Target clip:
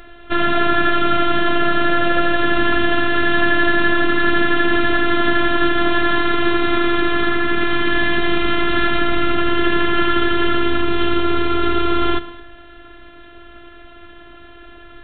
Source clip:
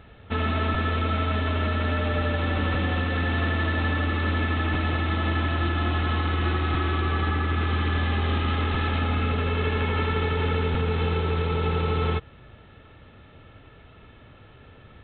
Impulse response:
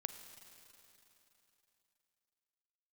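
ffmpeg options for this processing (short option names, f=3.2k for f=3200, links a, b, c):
-filter_complex "[0:a]asplit=2[a][b];[1:a]atrim=start_sample=2205,afade=t=out:st=0.32:d=0.01,atrim=end_sample=14553[c];[b][c]afir=irnorm=-1:irlink=0,volume=8dB[d];[a][d]amix=inputs=2:normalize=0,afftfilt=real='hypot(re,im)*cos(PI*b)':imag='0':win_size=512:overlap=0.75,volume=4dB"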